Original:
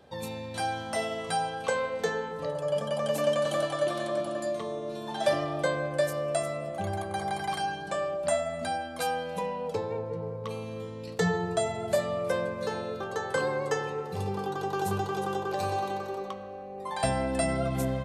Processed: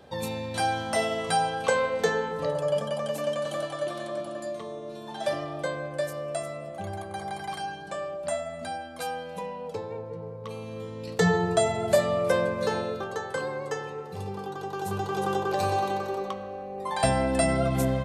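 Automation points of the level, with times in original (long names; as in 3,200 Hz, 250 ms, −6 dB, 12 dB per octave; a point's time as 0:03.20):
0:02.58 +4.5 dB
0:03.18 −3 dB
0:10.36 −3 dB
0:11.33 +5 dB
0:12.78 +5 dB
0:13.39 −3 dB
0:14.81 −3 dB
0:15.28 +4 dB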